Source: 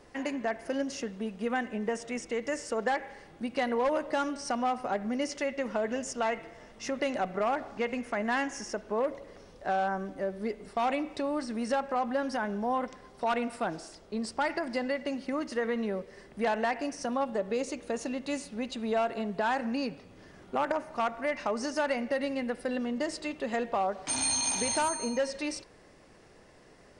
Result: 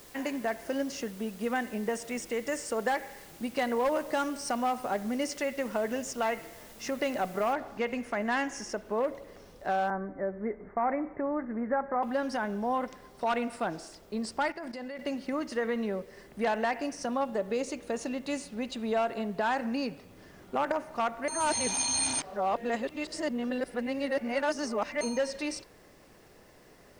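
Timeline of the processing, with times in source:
0:01.26–0:05.79: parametric band 8,700 Hz +6 dB 0.5 octaves
0:07.53: noise floor change −54 dB −69 dB
0:09.90–0:12.03: Butterworth low-pass 2,100 Hz 72 dB per octave
0:14.50–0:14.99: output level in coarse steps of 13 dB
0:21.28–0:25.01: reverse

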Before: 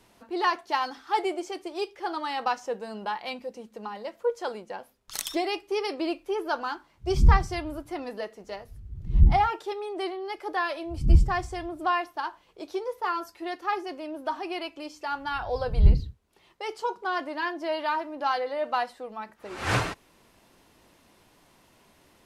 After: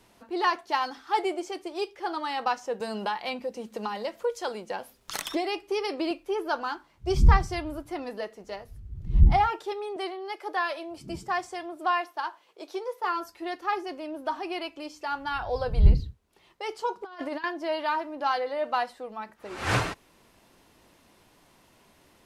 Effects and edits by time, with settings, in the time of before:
0:02.80–0:06.11: multiband upward and downward compressor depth 70%
0:09.96–0:13.04: high-pass filter 370 Hz
0:17.01–0:17.44: compressor whose output falls as the input rises −35 dBFS, ratio −0.5

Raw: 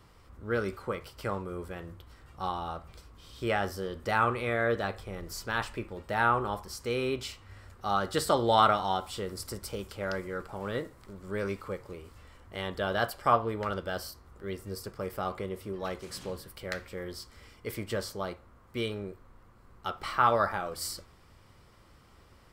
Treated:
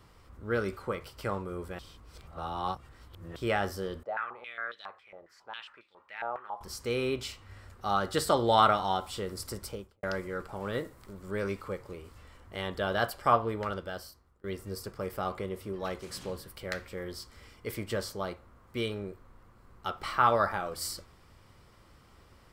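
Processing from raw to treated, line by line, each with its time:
0:01.79–0:03.36: reverse
0:04.03–0:06.61: band-pass on a step sequencer 7.3 Hz 650–3,800 Hz
0:09.61–0:10.03: fade out and dull
0:10.73–0:11.31: high-shelf EQ 11,000 Hz +7 dB
0:13.54–0:14.44: fade out, to −22.5 dB

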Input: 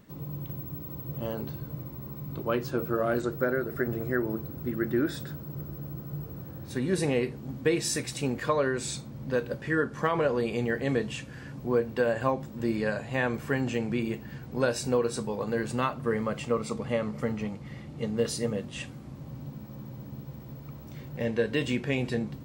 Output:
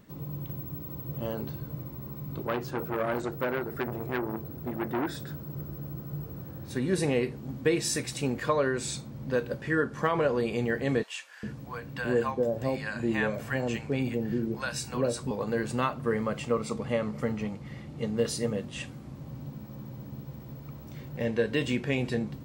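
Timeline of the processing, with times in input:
0:02.47–0:05.28: saturating transformer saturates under 1,300 Hz
0:11.03–0:15.31: multiband delay without the direct sound highs, lows 400 ms, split 770 Hz

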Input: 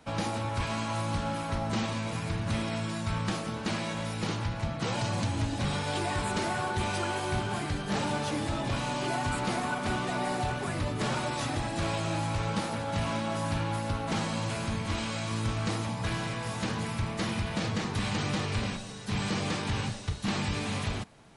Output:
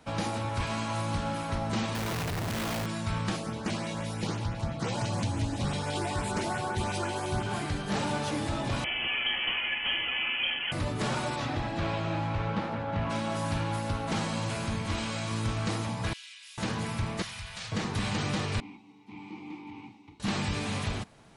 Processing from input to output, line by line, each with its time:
0:01.95–0:02.86: comparator with hysteresis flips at −44 dBFS
0:03.36–0:07.46: auto-filter notch saw up 5.9 Hz 960–4,900 Hz
0:08.84–0:10.72: voice inversion scrambler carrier 3,200 Hz
0:11.35–0:13.09: low-pass filter 4,600 Hz → 2,100 Hz
0:16.13–0:16.58: four-pole ladder high-pass 2,300 Hz, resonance 35%
0:17.22–0:17.72: guitar amp tone stack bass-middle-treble 10-0-10
0:18.60–0:20.20: formant filter u

